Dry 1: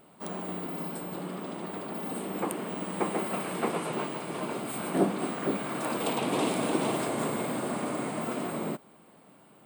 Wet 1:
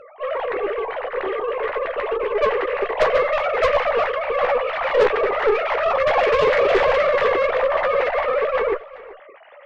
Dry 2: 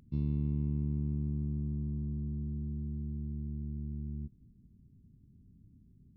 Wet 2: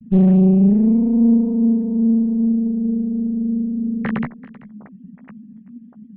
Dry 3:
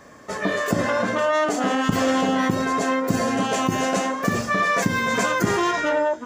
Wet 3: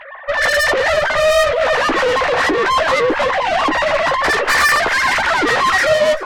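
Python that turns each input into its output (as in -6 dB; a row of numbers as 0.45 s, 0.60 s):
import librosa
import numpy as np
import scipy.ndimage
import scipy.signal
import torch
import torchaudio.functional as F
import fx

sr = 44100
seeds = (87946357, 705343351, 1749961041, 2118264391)

y = fx.sine_speech(x, sr)
y = fx.peak_eq(y, sr, hz=1900.0, db=6.5, octaves=0.33)
y = fx.tube_stage(y, sr, drive_db=28.0, bias=0.5)
y = fx.chorus_voices(y, sr, voices=4, hz=0.81, base_ms=14, depth_ms=1.9, mix_pct=30)
y = y + 10.0 ** (-19.5 / 20.0) * np.pad(y, (int(386 * sr / 1000.0), 0))[:len(y)]
y = fx.doppler_dist(y, sr, depth_ms=0.1)
y = y * 10.0 ** (-6 / 20.0) / np.max(np.abs(y))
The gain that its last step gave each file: +18.0 dB, +24.0 dB, +17.5 dB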